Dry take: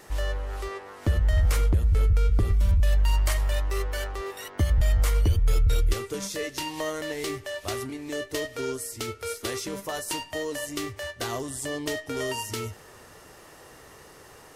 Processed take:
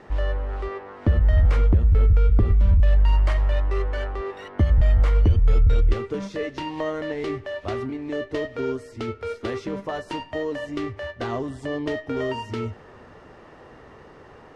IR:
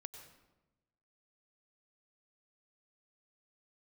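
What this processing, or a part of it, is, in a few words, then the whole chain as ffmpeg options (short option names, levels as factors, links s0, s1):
phone in a pocket: -af "lowpass=3500,equalizer=f=230:t=o:w=0.35:g=4.5,highshelf=f=2100:g=-9.5,volume=1.68"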